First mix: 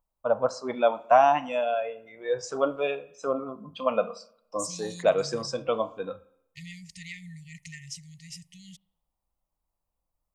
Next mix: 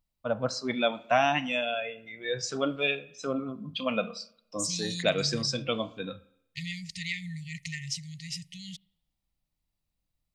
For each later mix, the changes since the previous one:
master: add octave-band graphic EQ 125/250/500/1,000/2,000/4,000 Hz +7/+4/−5/−10/+7/+10 dB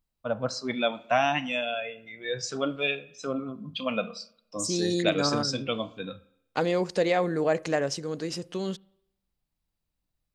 second voice: remove linear-phase brick-wall band-stop 180–1,800 Hz

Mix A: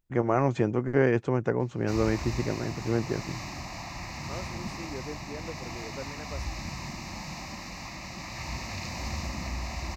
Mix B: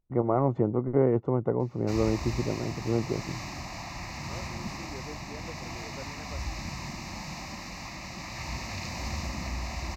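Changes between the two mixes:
first voice: add Savitzky-Golay smoothing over 65 samples
second voice −4.5 dB

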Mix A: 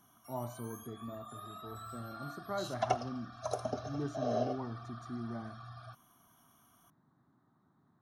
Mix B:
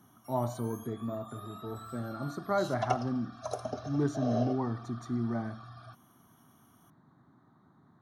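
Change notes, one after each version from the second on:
speech +8.5 dB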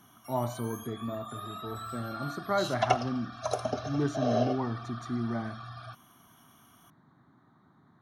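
background +4.5 dB
master: add parametric band 2,600 Hz +6.5 dB 1.5 octaves

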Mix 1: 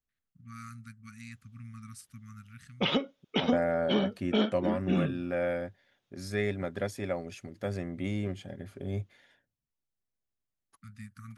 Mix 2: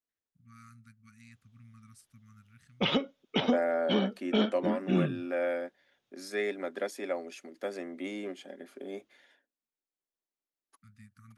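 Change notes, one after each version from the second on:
first voice −9.0 dB
second voice: add Butterworth high-pass 250 Hz 36 dB per octave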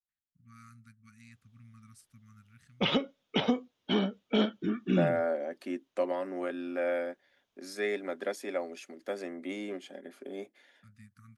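second voice: entry +1.45 s

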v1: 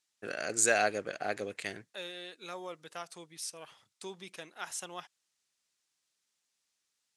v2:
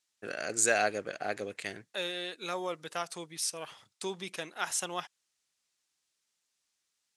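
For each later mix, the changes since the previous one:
second voice +7.0 dB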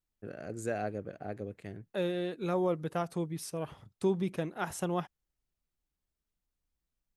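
first voice −10.0 dB
master: remove meter weighting curve ITU-R 468

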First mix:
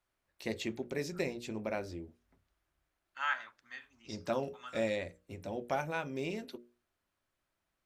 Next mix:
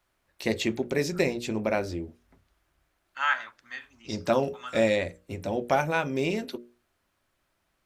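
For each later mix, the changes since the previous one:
first voice +10.0 dB
second voice +8.0 dB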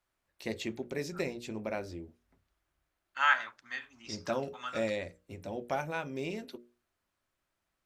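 first voice −9.5 dB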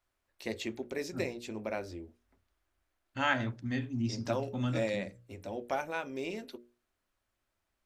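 second voice: remove high-pass with resonance 1,200 Hz, resonance Q 2.2
master: add parametric band 150 Hz −14 dB 0.34 octaves

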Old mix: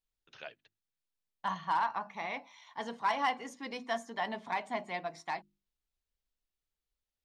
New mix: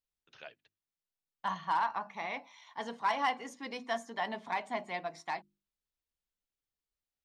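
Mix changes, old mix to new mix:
first voice −3.0 dB
second voice: add low-shelf EQ 69 Hz −11 dB

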